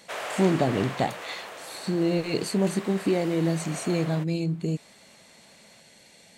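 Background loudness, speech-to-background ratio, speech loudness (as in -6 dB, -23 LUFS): -38.0 LUFS, 11.0 dB, -27.0 LUFS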